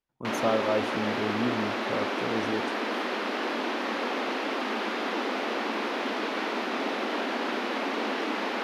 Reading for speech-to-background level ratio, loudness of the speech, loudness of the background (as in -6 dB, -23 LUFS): -2.0 dB, -32.0 LUFS, -30.0 LUFS